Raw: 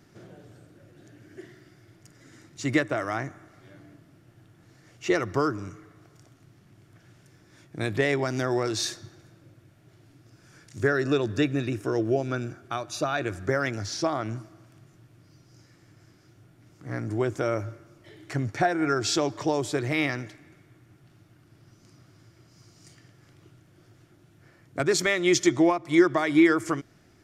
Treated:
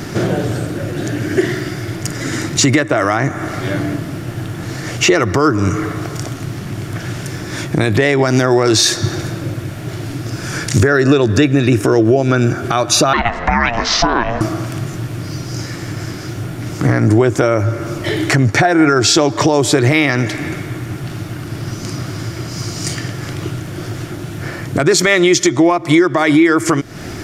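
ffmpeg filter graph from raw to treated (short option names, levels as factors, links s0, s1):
-filter_complex "[0:a]asettb=1/sr,asplit=3[s0][s1][s2];[s0]atrim=end=13.134[s3];[s1]atrim=start=13.13:end=14.41,asetpts=PTS-STARTPTS,afade=t=in:d=0.004:c=qsin,afade=t=out:st=1.276:d=0.004:c=qsin,acrossover=split=280 4200:gain=0.1 1 0.0631[s4][s5][s6];[s4][s5][s6]amix=inputs=3:normalize=0,aeval=exprs='val(0)*sin(2*PI*350*n/s)':c=same,lowpass=f=7900:w=0.5412,lowpass=f=7900:w=1.3066[s7];[s2]atrim=start=14.406[s8];[s3][s7]acrossfade=d=0.004:c1=hsin:c2=qsin[s9];[s9][s8]acrossfade=d=0.004:c1=qsin:c2=hsin,acompressor=threshold=0.0112:ratio=8,alimiter=level_in=42.2:limit=0.891:release=50:level=0:latency=1,volume=0.891"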